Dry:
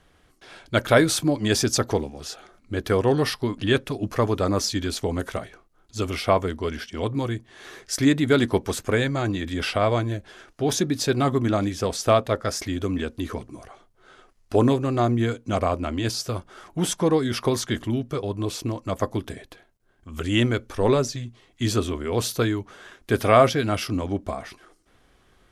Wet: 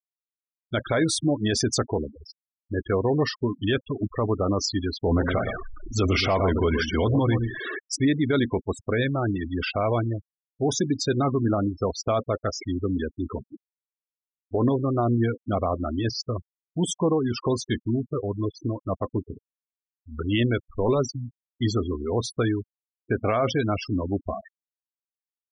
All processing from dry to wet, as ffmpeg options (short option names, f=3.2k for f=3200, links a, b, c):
-filter_complex "[0:a]asettb=1/sr,asplit=3[a][b][c];[a]atrim=end=5.064[d];[b]atrim=start=5.06:end=7.79,asetpts=PTS-STARTPTS,afade=t=in:d=0.004:c=qsin,afade=t=out:st=2.726:d=0.004:c=qsin,aeval=exprs='val(0)+0.5*0.02*sgn(val(0))':c=same,acontrast=61,aecho=1:1:119:0.355,atrim=end_sample=120393[e];[c]atrim=start=7.786[f];[d][e]acrossfade=d=0.004:c1=hsin:c2=qsin[g];[g][f]acrossfade=d=0.004:c1=qsin:c2=hsin,afftfilt=real='re*gte(hypot(re,im),0.0708)':imag='im*gte(hypot(re,im),0.0708)':win_size=1024:overlap=0.75,alimiter=limit=-14dB:level=0:latency=1:release=28"